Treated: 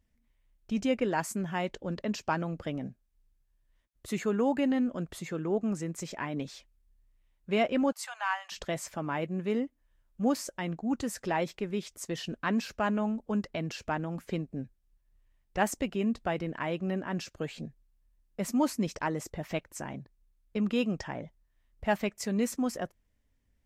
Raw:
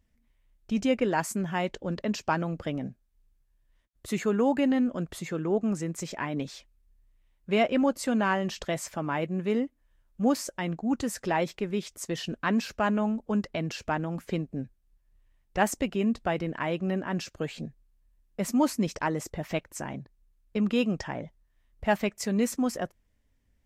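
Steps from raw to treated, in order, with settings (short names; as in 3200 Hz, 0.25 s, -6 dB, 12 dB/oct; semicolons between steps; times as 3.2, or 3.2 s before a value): 7.92–8.52 steep high-pass 760 Hz 48 dB/oct; gain -3 dB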